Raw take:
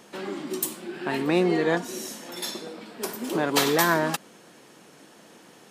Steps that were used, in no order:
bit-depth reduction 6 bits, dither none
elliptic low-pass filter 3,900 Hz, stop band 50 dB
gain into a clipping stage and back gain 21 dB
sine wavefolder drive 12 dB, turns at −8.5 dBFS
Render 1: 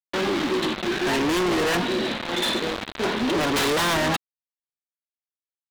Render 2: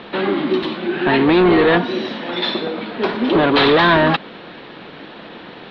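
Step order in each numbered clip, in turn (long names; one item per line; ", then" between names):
bit-depth reduction, then elliptic low-pass filter, then sine wavefolder, then gain into a clipping stage and back
gain into a clipping stage and back, then sine wavefolder, then bit-depth reduction, then elliptic low-pass filter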